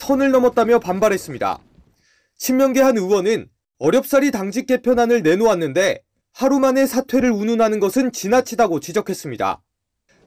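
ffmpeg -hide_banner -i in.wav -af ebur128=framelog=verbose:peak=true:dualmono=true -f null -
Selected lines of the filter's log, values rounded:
Integrated loudness:
  I:         -14.8 LUFS
  Threshold: -25.3 LUFS
Loudness range:
  LRA:         2.1 LU
  Threshold: -35.1 LUFS
  LRA low:   -16.3 LUFS
  LRA high:  -14.3 LUFS
True peak:
  Peak:       -5.7 dBFS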